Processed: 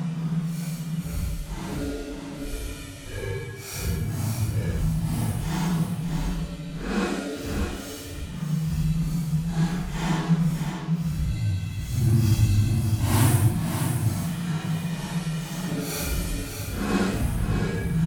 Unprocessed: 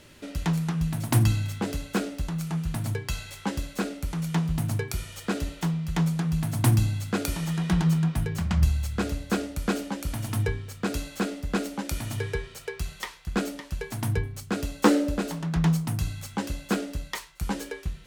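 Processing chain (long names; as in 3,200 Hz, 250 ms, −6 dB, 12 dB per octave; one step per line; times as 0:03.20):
slices reordered back to front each 160 ms, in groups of 4
extreme stretch with random phases 4.6×, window 0.10 s, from 0:03.94
single-tap delay 609 ms −6.5 dB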